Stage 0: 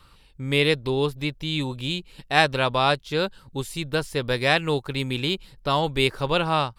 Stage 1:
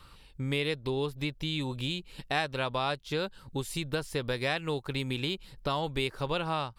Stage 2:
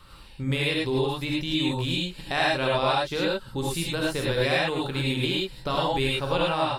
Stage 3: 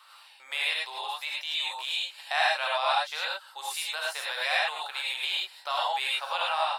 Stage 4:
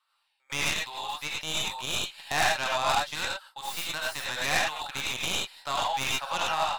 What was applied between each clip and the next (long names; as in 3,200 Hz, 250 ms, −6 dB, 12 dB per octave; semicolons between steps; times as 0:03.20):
downward compressor 3 to 1, threshold −30 dBFS, peak gain reduction 13.5 dB
reverb whose tail is shaped and stops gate 130 ms rising, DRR −4 dB; level +1.5 dB
elliptic high-pass filter 700 Hz, stop band 80 dB
stylus tracing distortion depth 0.17 ms; noise gate with hold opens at −39 dBFS